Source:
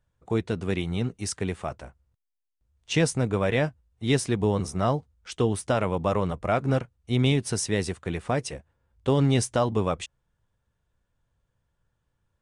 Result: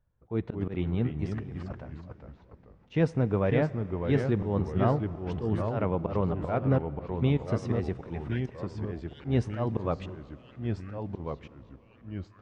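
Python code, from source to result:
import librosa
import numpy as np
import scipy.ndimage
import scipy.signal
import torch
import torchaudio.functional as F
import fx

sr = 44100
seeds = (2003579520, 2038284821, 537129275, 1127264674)

y = fx.over_compress(x, sr, threshold_db=-35.0, ratio=-0.5, at=(1.26, 1.73))
y = fx.brickwall_highpass(y, sr, low_hz=1400.0, at=(8.28, 9.25))
y = fx.auto_swell(y, sr, attack_ms=129.0)
y = fx.level_steps(y, sr, step_db=22, at=(6.78, 7.48))
y = fx.spacing_loss(y, sr, db_at_10k=37)
y = fx.rev_plate(y, sr, seeds[0], rt60_s=4.6, hf_ratio=0.9, predelay_ms=0, drr_db=17.5)
y = fx.echo_pitch(y, sr, ms=186, semitones=-2, count=3, db_per_echo=-6.0)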